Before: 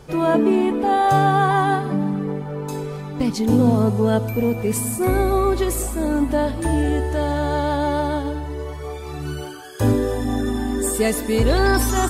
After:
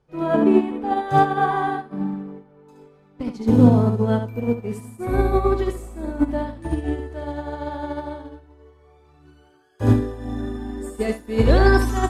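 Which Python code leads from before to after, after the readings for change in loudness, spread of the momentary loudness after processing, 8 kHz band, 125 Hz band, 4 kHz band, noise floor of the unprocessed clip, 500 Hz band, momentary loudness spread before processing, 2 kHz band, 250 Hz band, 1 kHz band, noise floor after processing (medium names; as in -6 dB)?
-1.0 dB, 16 LU, under -15 dB, -0.5 dB, -7.0 dB, -31 dBFS, -2.5 dB, 12 LU, -3.0 dB, -1.5 dB, -3.0 dB, -54 dBFS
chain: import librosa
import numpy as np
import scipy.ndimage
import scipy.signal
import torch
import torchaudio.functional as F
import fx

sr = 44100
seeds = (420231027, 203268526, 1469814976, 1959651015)

y = fx.lowpass(x, sr, hz=2700.0, slope=6)
y = y + 10.0 ** (-4.0 / 20.0) * np.pad(y, (int(72 * sr / 1000.0), 0))[:len(y)]
y = fx.upward_expand(y, sr, threshold_db=-28.0, expansion=2.5)
y = y * 10.0 ** (3.0 / 20.0)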